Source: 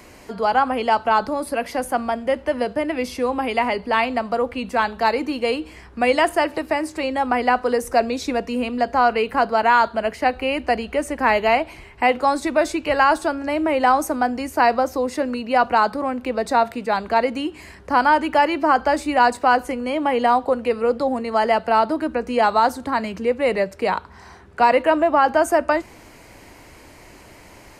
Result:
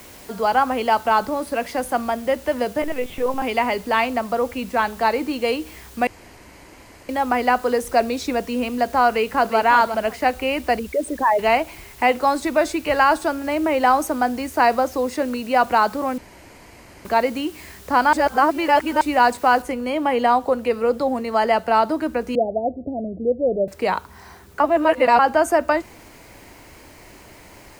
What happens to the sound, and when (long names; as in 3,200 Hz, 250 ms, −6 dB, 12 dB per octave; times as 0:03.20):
0:01.20–0:01.63: high-shelf EQ 5,800 Hz → 11,000 Hz −7.5 dB
0:02.82–0:03.42: linear-prediction vocoder at 8 kHz pitch kept
0:04.07–0:05.31: high-shelf EQ 5,800 Hz −9.5 dB
0:06.07–0:07.09: fill with room tone
0:09.09–0:09.58: delay throw 360 ms, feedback 15%, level −8 dB
0:10.79–0:11.39: spectral envelope exaggerated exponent 3
0:16.18–0:17.05: fill with room tone
0:18.13–0:19.01: reverse
0:19.62: noise floor change −46 dB −56 dB
0:22.35–0:23.68: Butterworth low-pass 720 Hz 96 dB per octave
0:24.60–0:25.19: reverse